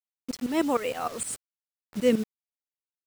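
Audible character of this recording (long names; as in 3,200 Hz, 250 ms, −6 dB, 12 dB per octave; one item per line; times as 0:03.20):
tremolo saw up 6.5 Hz, depth 85%
a quantiser's noise floor 8 bits, dither none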